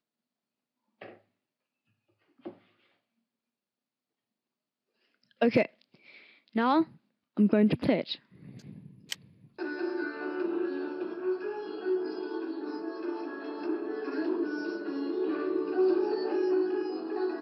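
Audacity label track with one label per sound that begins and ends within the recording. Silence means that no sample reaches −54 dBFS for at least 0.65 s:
1.010000	1.170000	sound
2.390000	2.580000	sound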